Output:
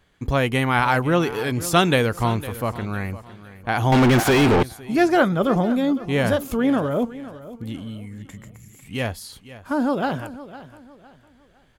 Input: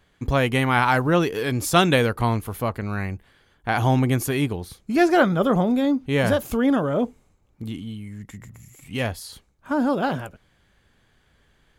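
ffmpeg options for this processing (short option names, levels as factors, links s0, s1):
-filter_complex "[0:a]aecho=1:1:507|1014|1521:0.158|0.0523|0.0173,asettb=1/sr,asplit=3[s0][s1][s2];[s0]atrim=end=3.924[s3];[s1]atrim=start=3.92:end=4.63,asetpts=PTS-STARTPTS,afade=t=in:d=0.004:c=qsin,afade=t=out:st=0.706:d=0.004:c=qsin,asplit=2[s4][s5];[s5]highpass=f=720:p=1,volume=100,asoftclip=type=tanh:threshold=0.376[s6];[s4][s6]amix=inputs=2:normalize=0,lowpass=f=1800:p=1,volume=0.501[s7];[s2]atrim=start=4.626[s8];[s3][s7]acrossfade=d=0.004:c1=hsin:c2=qsin[s9];[s9][s8]acrossfade=d=0.004:c1=qsin:c2=hsin"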